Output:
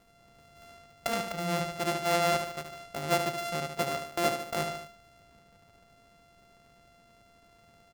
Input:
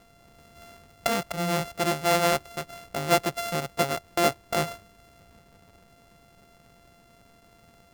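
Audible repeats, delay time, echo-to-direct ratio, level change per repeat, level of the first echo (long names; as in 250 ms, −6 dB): 3, 74 ms, −6.0 dB, −5.5 dB, −7.5 dB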